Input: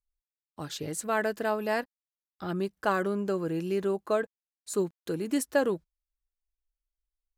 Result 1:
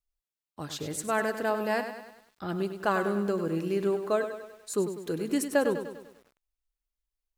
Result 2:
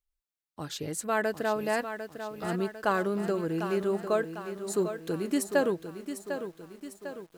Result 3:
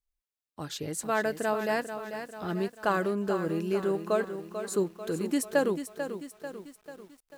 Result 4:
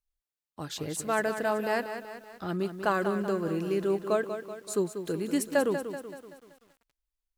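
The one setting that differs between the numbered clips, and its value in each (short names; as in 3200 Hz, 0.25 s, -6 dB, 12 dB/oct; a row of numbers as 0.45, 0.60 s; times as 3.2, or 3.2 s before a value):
lo-fi delay, time: 99, 750, 442, 190 ms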